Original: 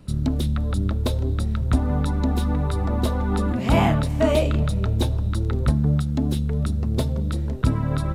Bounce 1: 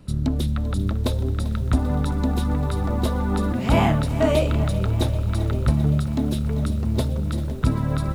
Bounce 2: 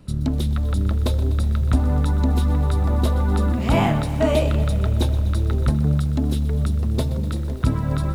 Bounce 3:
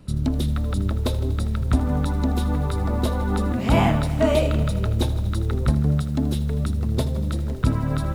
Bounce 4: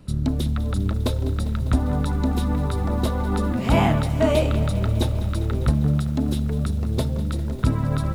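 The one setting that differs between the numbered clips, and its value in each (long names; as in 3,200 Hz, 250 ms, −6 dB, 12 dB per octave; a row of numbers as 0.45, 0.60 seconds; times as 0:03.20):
feedback echo at a low word length, delay time: 392, 124, 80, 200 milliseconds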